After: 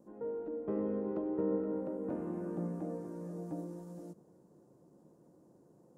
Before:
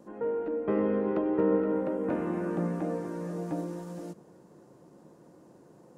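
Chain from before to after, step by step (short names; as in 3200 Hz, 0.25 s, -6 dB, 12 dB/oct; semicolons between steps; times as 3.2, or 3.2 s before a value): bell 2400 Hz -13 dB 2.2 oct; gain -6.5 dB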